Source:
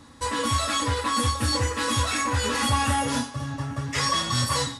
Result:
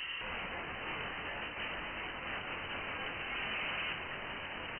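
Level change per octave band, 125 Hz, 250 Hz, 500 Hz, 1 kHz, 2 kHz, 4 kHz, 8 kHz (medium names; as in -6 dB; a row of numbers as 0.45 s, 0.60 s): -25.5 dB, -20.0 dB, -14.5 dB, -17.0 dB, -7.0 dB, -14.0 dB, under -40 dB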